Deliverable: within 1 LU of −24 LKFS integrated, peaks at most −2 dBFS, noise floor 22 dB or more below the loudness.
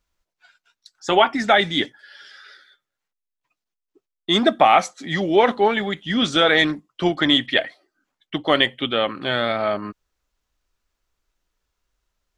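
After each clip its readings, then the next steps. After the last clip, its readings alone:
integrated loudness −19.5 LKFS; sample peak −2.5 dBFS; target loudness −24.0 LKFS
→ level −4.5 dB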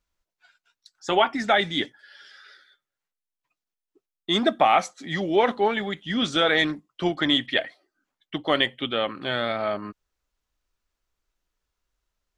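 integrated loudness −24.0 LKFS; sample peak −7.0 dBFS; background noise floor −88 dBFS

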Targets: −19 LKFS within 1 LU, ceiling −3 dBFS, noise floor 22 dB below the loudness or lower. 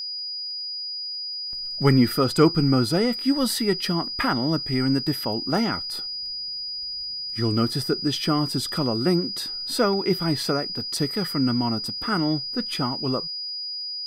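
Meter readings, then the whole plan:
crackle rate 23 per second; interfering tone 4,900 Hz; level of the tone −29 dBFS; integrated loudness −24.0 LKFS; sample peak −5.5 dBFS; target loudness −19.0 LKFS
→ click removal
notch filter 4,900 Hz, Q 30
level +5 dB
brickwall limiter −3 dBFS

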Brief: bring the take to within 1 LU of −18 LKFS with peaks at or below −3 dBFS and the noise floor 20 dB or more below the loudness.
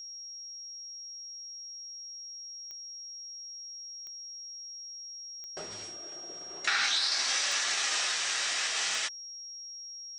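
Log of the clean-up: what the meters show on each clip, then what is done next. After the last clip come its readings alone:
number of clicks 5; interfering tone 5,600 Hz; level of the tone −41 dBFS; integrated loudness −32.5 LKFS; sample peak −15.5 dBFS; target loudness −18.0 LKFS
→ click removal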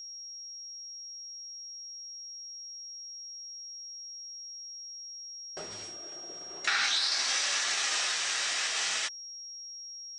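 number of clicks 0; interfering tone 5,600 Hz; level of the tone −41 dBFS
→ notch filter 5,600 Hz, Q 30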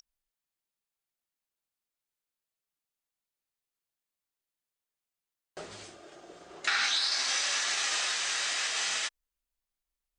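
interfering tone none found; integrated loudness −28.0 LKFS; sample peak −15.5 dBFS; target loudness −18.0 LKFS
→ level +10 dB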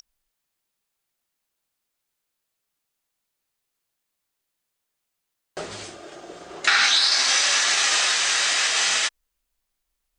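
integrated loudness −18.0 LKFS; sample peak −5.5 dBFS; background noise floor −81 dBFS

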